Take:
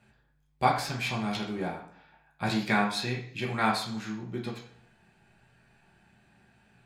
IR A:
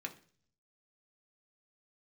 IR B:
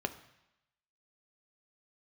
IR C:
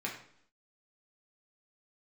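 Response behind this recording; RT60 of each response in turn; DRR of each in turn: C; 0.45, 0.85, 0.65 seconds; 2.0, 8.0, −3.5 decibels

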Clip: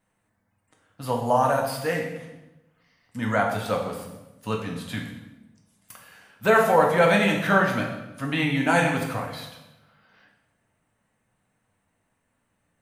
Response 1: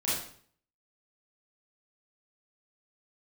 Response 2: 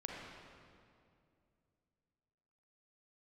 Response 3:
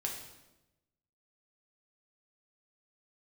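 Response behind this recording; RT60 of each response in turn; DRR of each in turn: 3; 0.55, 2.4, 1.0 seconds; −9.5, −2.5, 0.0 decibels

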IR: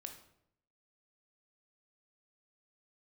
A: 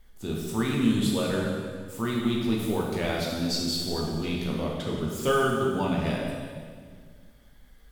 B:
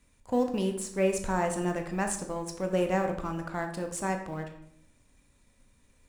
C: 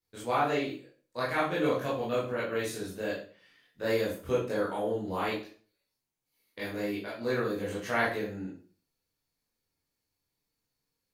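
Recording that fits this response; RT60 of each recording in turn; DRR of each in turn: B; 1.9, 0.75, 0.40 seconds; −3.0, 4.5, −8.0 decibels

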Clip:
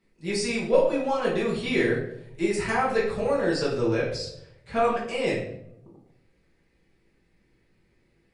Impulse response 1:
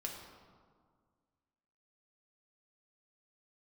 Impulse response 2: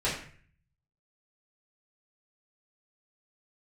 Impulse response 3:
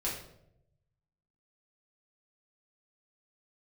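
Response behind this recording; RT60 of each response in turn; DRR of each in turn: 3; 1.8, 0.50, 0.80 seconds; −0.5, −9.5, −6.5 decibels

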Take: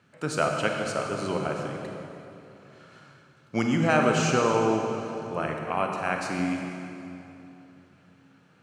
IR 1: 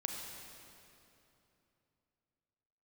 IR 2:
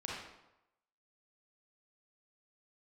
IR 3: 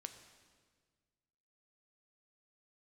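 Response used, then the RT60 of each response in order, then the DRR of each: 1; 3.0, 0.90, 1.6 seconds; 1.0, −5.0, 7.0 decibels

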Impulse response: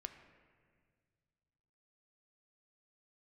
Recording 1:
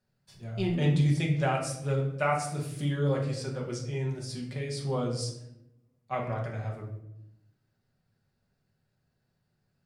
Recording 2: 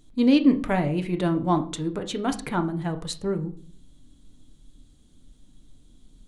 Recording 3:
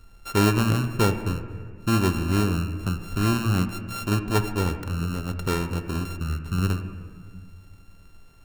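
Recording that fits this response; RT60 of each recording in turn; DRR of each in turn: 3; 0.85, 0.45, 1.9 seconds; −2.0, 6.0, 7.0 decibels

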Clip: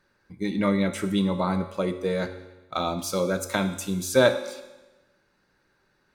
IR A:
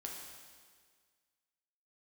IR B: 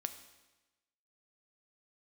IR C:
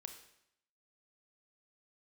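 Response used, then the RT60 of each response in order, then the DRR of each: B; 1.7, 1.1, 0.75 seconds; −1.5, 8.5, 5.5 decibels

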